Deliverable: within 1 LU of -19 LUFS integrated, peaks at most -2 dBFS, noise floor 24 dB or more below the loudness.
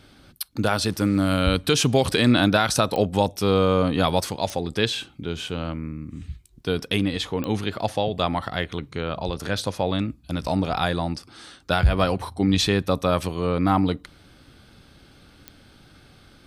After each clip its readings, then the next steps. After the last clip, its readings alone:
clicks found 4; loudness -23.5 LUFS; peak level -5.0 dBFS; loudness target -19.0 LUFS
-> de-click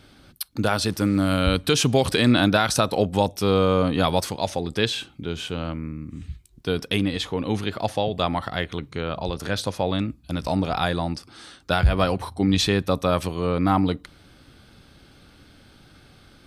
clicks found 0; loudness -23.5 LUFS; peak level -5.0 dBFS; loudness target -19.0 LUFS
-> trim +4.5 dB; peak limiter -2 dBFS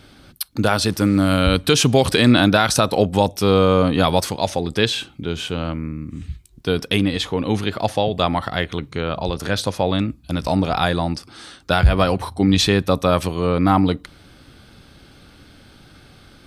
loudness -19.0 LUFS; peak level -2.0 dBFS; noise floor -49 dBFS

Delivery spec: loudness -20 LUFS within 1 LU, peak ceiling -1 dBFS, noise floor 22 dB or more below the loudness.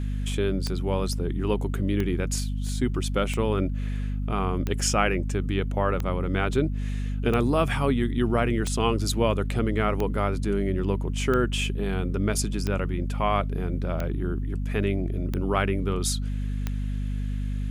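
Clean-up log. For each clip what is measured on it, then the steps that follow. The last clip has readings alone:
clicks found 13; hum 50 Hz; highest harmonic 250 Hz; hum level -26 dBFS; loudness -26.5 LUFS; peak level -7.0 dBFS; loudness target -20.0 LUFS
-> de-click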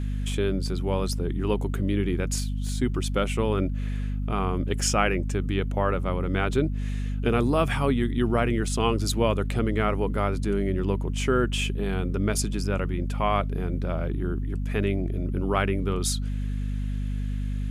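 clicks found 0; hum 50 Hz; highest harmonic 250 Hz; hum level -26 dBFS
-> hum notches 50/100/150/200/250 Hz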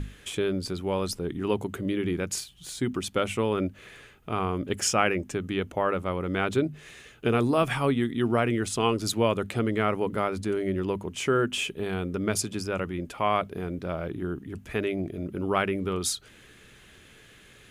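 hum not found; loudness -28.5 LUFS; peak level -7.0 dBFS; loudness target -20.0 LUFS
-> trim +8.5 dB; peak limiter -1 dBFS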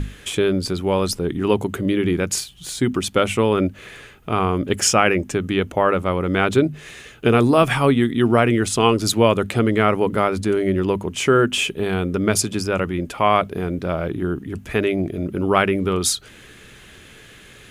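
loudness -20.0 LUFS; peak level -1.0 dBFS; noise floor -45 dBFS

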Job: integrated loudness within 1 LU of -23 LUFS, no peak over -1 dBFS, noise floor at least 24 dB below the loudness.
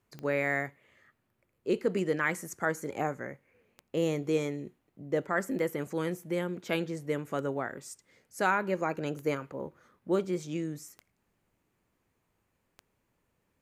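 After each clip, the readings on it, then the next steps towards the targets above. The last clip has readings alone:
clicks found 8; loudness -32.5 LUFS; peak level -14.0 dBFS; loudness target -23.0 LUFS
-> de-click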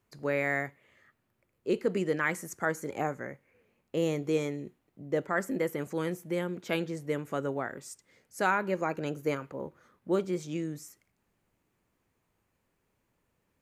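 clicks found 0; loudness -32.5 LUFS; peak level -14.0 dBFS; loudness target -23.0 LUFS
-> trim +9.5 dB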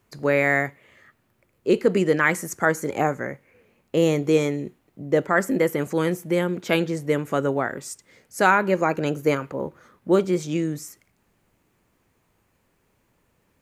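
loudness -23.0 LUFS; peak level -4.5 dBFS; noise floor -68 dBFS

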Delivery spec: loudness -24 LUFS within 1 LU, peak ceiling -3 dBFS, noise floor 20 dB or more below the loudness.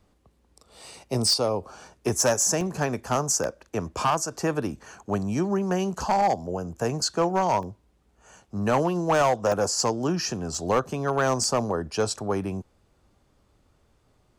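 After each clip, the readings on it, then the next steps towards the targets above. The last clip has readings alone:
clipped samples 0.8%; clipping level -15.5 dBFS; dropouts 6; longest dropout 1.2 ms; loudness -25.5 LUFS; peak level -15.5 dBFS; loudness target -24.0 LUFS
-> clip repair -15.5 dBFS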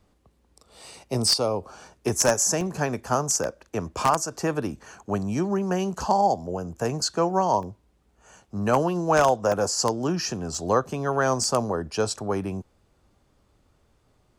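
clipped samples 0.0%; dropouts 6; longest dropout 1.2 ms
-> interpolate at 2.61/3.44/7.63/9.52/10.55/11.44 s, 1.2 ms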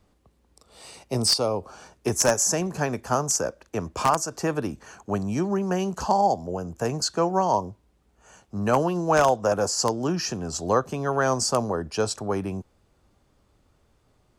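dropouts 0; loudness -25.0 LUFS; peak level -6.5 dBFS; loudness target -24.0 LUFS
-> trim +1 dB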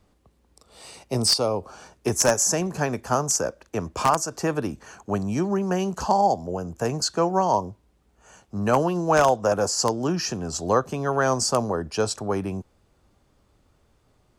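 loudness -24.0 LUFS; peak level -5.5 dBFS; noise floor -64 dBFS

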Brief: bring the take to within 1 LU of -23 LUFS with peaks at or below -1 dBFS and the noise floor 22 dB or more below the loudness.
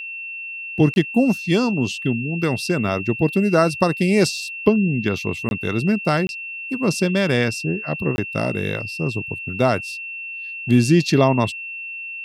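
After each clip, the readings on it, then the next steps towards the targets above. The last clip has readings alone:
dropouts 4; longest dropout 21 ms; steady tone 2.7 kHz; tone level -29 dBFS; loudness -21.0 LUFS; peak level -2.5 dBFS; loudness target -23.0 LUFS
-> interpolate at 0.94/5.49/6.27/8.16 s, 21 ms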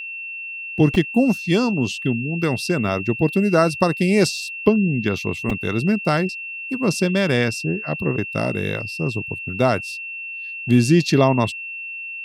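dropouts 0; steady tone 2.7 kHz; tone level -29 dBFS
-> band-stop 2.7 kHz, Q 30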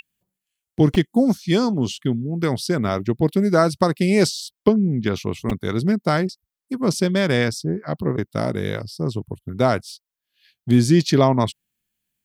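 steady tone not found; loudness -20.5 LUFS; peak level -2.5 dBFS; loudness target -23.0 LUFS
-> trim -2.5 dB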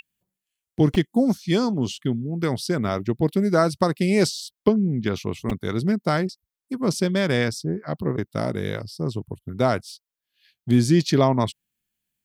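loudness -23.0 LUFS; peak level -5.0 dBFS; noise floor -88 dBFS

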